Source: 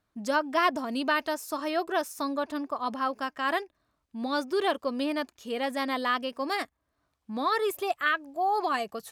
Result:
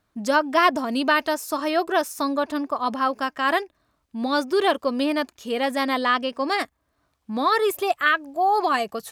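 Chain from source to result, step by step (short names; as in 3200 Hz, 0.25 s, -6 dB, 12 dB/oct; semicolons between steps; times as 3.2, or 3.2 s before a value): 5.98–6.6 bell 13000 Hz -13.5 dB 0.54 oct; gain +6.5 dB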